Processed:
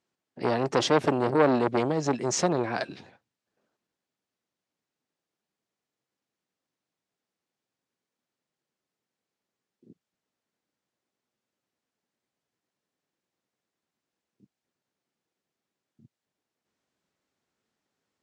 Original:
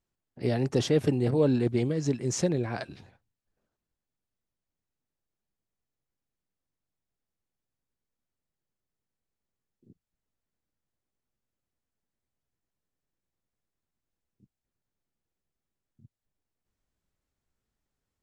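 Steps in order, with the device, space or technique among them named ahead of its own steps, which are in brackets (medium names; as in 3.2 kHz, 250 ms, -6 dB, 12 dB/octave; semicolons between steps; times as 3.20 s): public-address speaker with an overloaded transformer (transformer saturation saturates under 930 Hz; band-pass 210–6900 Hz); trim +6.5 dB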